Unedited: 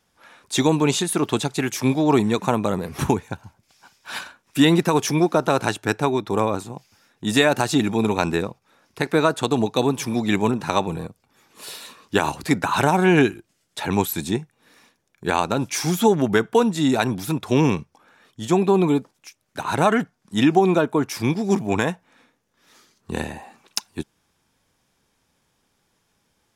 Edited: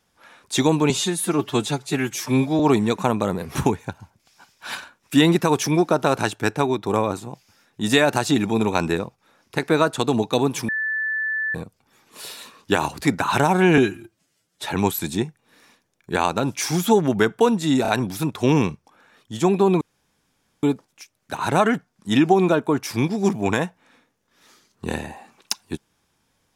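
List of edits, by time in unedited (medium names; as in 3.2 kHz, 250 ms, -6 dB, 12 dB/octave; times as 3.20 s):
0.90–2.03 s: stretch 1.5×
10.12–10.98 s: bleep 1.75 kHz -21.5 dBFS
13.21–13.80 s: stretch 1.5×
16.96 s: stutter 0.03 s, 3 plays
18.89 s: insert room tone 0.82 s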